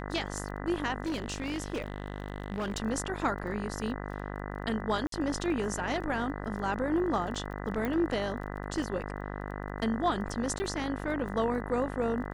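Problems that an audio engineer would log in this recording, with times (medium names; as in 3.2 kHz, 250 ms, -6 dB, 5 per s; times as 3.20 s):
buzz 50 Hz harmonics 40 -38 dBFS
crackle 15 per s -41 dBFS
1.04–2.78 s: clipped -29 dBFS
5.07–5.12 s: dropout 53 ms
7.85 s: pop -20 dBFS
10.59–10.60 s: dropout 10 ms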